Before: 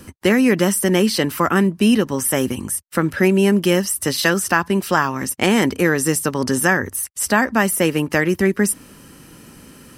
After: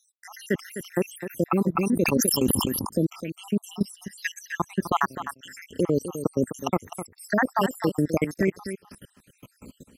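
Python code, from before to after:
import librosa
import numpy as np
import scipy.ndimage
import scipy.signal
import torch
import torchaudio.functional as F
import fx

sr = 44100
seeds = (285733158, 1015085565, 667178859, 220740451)

y = fx.spec_dropout(x, sr, seeds[0], share_pct=76)
y = fx.level_steps(y, sr, step_db=23)
y = fx.cheby_ripple_highpass(y, sr, hz=1600.0, ripple_db=6, at=(4.0, 4.6))
y = y + 10.0 ** (-10.5 / 20.0) * np.pad(y, (int(255 * sr / 1000.0), 0))[:len(y)]
y = fx.sustainer(y, sr, db_per_s=25.0, at=(1.75, 2.88), fade=0.02)
y = y * librosa.db_to_amplitude(2.0)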